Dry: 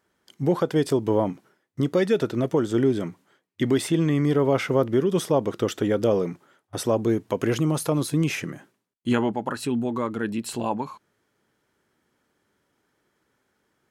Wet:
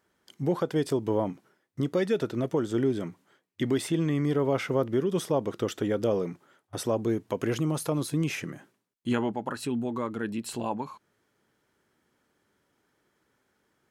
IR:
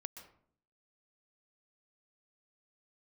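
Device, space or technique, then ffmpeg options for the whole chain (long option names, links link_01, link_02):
parallel compression: -filter_complex "[0:a]asplit=2[link_01][link_02];[link_02]acompressor=threshold=-40dB:ratio=6,volume=-3.5dB[link_03];[link_01][link_03]amix=inputs=2:normalize=0,volume=-5.5dB"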